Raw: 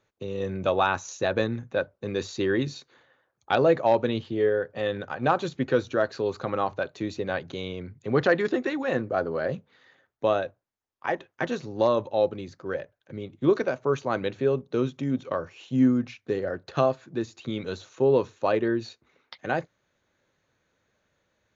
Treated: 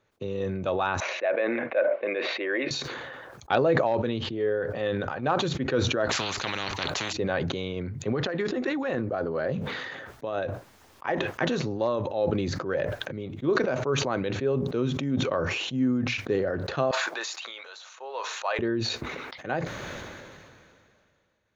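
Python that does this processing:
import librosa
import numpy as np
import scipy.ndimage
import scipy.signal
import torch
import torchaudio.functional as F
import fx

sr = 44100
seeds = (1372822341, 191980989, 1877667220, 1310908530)

y = fx.cabinet(x, sr, low_hz=380.0, low_slope=24, high_hz=2600.0, hz=(420.0, 610.0, 880.0, 1300.0, 2200.0), db=(-8, 8, -6, -4, 9), at=(1.0, 2.71))
y = fx.spectral_comp(y, sr, ratio=10.0, at=(6.09, 7.13))
y = fx.over_compress(y, sr, threshold_db=-26.0, ratio=-1.0, at=(7.76, 10.39))
y = fx.highpass(y, sr, hz=740.0, slope=24, at=(16.91, 18.59))
y = fx.rider(y, sr, range_db=4, speed_s=0.5)
y = fx.high_shelf(y, sr, hz=5800.0, db=-6.5)
y = fx.sustainer(y, sr, db_per_s=26.0)
y = y * librosa.db_to_amplitude(-2.5)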